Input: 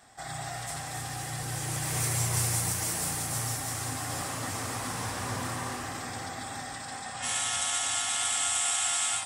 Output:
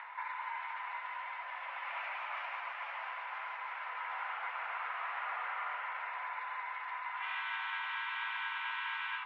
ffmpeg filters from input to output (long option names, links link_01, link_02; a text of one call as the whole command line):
ffmpeg -i in.wav -af "acompressor=mode=upward:threshold=-32dB:ratio=2.5,highpass=frequency=510:width_type=q:width=0.5412,highpass=frequency=510:width_type=q:width=1.307,lowpass=frequency=2500:width_type=q:width=0.5176,lowpass=frequency=2500:width_type=q:width=0.7071,lowpass=frequency=2500:width_type=q:width=1.932,afreqshift=220,volume=-1.5dB" out.wav